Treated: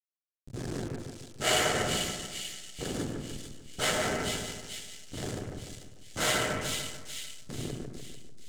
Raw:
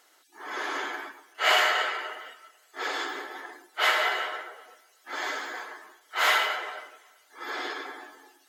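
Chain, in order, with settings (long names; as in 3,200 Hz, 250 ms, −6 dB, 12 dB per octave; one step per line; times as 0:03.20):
slack as between gear wheels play −22.5 dBFS
octave-band graphic EQ 125/250/500/1,000/2,000/8,000 Hz +9/+6/+3/−11/−6/+10 dB
echo with a time of its own for lows and highs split 2,400 Hz, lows 148 ms, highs 441 ms, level −4 dB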